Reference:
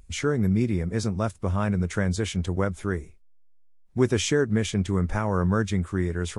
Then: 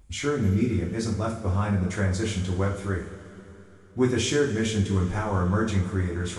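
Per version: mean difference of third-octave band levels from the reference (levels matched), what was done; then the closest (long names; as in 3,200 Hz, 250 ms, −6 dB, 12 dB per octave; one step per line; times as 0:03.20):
5.5 dB: coupled-rooms reverb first 0.42 s, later 3.6 s, from −18 dB, DRR −3 dB
level −5 dB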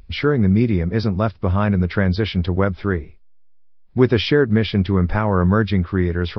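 2.5 dB: downsampling to 11,025 Hz
level +7 dB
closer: second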